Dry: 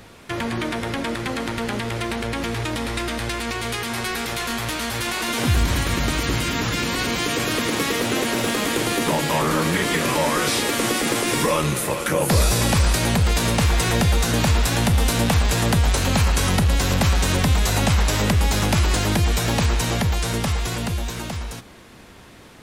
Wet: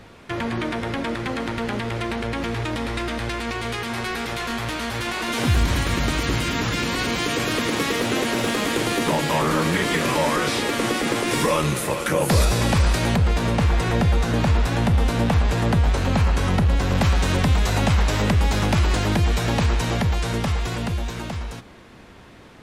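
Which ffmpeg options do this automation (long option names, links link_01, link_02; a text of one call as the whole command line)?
ffmpeg -i in.wav -af "asetnsamples=nb_out_samples=441:pad=0,asendcmd='5.32 lowpass f 6400;10.36 lowpass f 3700;11.31 lowpass f 7900;12.45 lowpass f 3600;13.16 lowpass f 1700;16.95 lowpass f 3400',lowpass=frequency=3500:poles=1" out.wav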